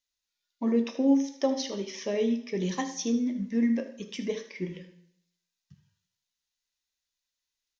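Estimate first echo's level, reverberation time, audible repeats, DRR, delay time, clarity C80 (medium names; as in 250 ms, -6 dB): -14.0 dB, 0.70 s, 1, 6.5 dB, 77 ms, 14.0 dB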